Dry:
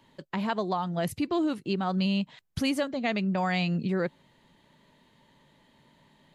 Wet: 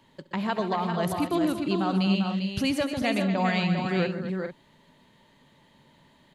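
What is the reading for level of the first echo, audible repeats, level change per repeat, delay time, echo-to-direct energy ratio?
-19.0 dB, 5, no regular repeats, 68 ms, -3.0 dB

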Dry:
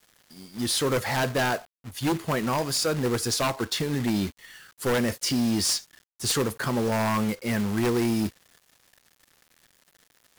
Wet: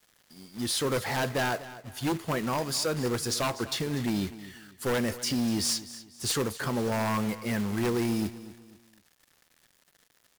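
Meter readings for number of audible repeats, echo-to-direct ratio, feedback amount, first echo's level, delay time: 3, -15.5 dB, 35%, -16.0 dB, 246 ms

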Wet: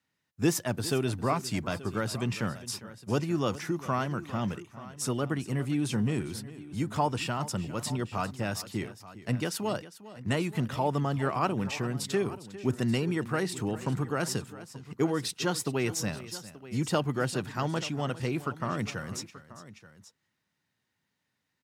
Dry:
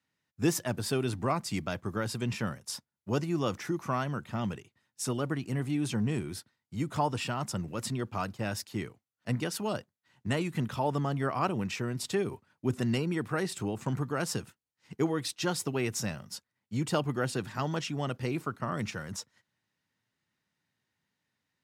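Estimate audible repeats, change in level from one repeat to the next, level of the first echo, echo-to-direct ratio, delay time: 2, no regular repeats, -16.5 dB, -13.5 dB, 403 ms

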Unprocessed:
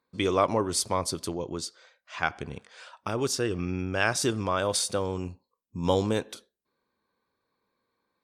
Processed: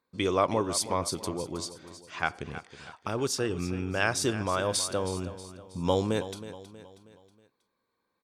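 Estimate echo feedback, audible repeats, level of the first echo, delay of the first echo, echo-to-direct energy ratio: 45%, 4, -13.5 dB, 319 ms, -12.5 dB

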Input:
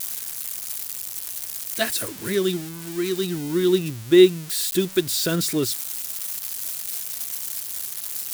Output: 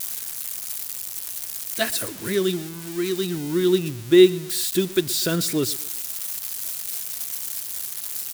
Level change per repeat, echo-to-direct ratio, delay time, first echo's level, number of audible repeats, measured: -7.5 dB, -19.0 dB, 122 ms, -20.0 dB, 2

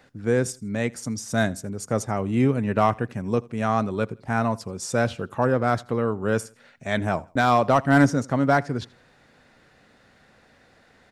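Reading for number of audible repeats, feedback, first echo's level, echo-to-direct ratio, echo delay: 2, 35%, -24.0 dB, -23.5 dB, 81 ms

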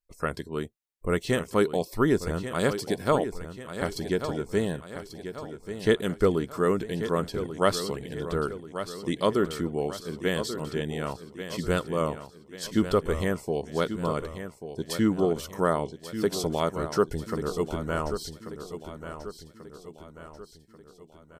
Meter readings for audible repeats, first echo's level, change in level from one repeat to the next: 4, -10.5 dB, -6.5 dB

